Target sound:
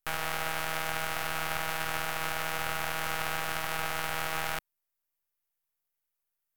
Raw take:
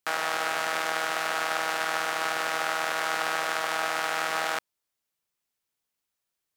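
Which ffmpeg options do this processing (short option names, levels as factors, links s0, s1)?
-af "aeval=exprs='max(val(0),0)':c=same,equalizer=f=250:t=o:w=1:g=-10,equalizer=f=4000:t=o:w=1:g=-6,equalizer=f=8000:t=o:w=1:g=-5,equalizer=f=16000:t=o:w=1:g=8"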